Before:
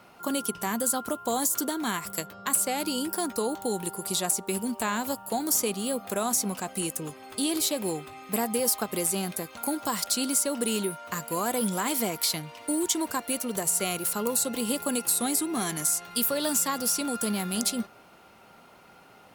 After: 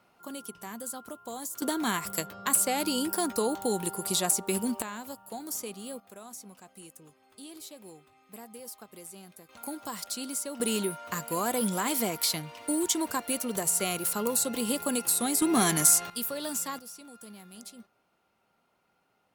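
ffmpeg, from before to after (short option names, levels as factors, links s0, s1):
-af "asetnsamples=n=441:p=0,asendcmd='1.62 volume volume 0.5dB;4.82 volume volume -10.5dB;6 volume volume -18.5dB;9.49 volume volume -8.5dB;10.6 volume volume -1dB;15.42 volume volume 5.5dB;16.1 volume volume -7dB;16.79 volume volume -19dB',volume=0.266"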